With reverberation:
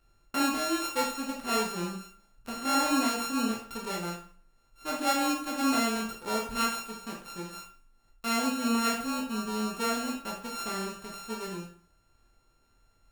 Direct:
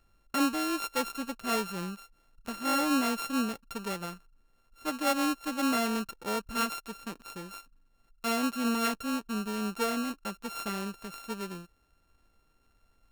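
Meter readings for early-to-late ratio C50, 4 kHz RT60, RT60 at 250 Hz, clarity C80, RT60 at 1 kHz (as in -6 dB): 5.5 dB, 0.45 s, 0.50 s, 10.5 dB, 0.45 s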